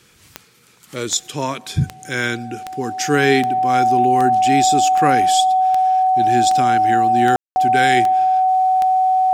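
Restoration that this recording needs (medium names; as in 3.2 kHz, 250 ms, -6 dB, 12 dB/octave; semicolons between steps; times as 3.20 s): de-click; band-stop 750 Hz, Q 30; room tone fill 7.36–7.56 s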